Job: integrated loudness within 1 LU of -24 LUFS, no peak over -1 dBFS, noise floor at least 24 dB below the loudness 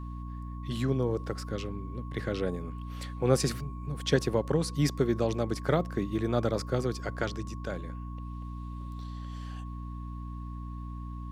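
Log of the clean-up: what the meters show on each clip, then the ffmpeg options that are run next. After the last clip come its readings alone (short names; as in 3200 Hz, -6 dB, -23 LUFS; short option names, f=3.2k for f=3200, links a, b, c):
hum 60 Hz; harmonics up to 300 Hz; hum level -36 dBFS; steady tone 1100 Hz; tone level -48 dBFS; loudness -32.5 LUFS; peak -10.0 dBFS; loudness target -24.0 LUFS
-> -af "bandreject=f=60:t=h:w=6,bandreject=f=120:t=h:w=6,bandreject=f=180:t=h:w=6,bandreject=f=240:t=h:w=6,bandreject=f=300:t=h:w=6"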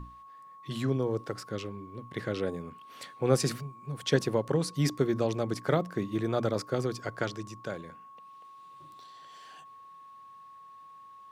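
hum none; steady tone 1100 Hz; tone level -48 dBFS
-> -af "bandreject=f=1.1k:w=30"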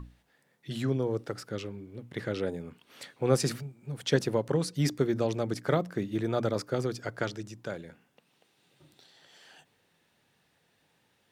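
steady tone none; loudness -31.5 LUFS; peak -11.0 dBFS; loudness target -24.0 LUFS
-> -af "volume=7.5dB"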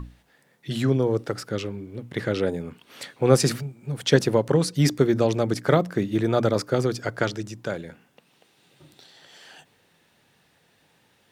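loudness -24.0 LUFS; peak -3.5 dBFS; noise floor -64 dBFS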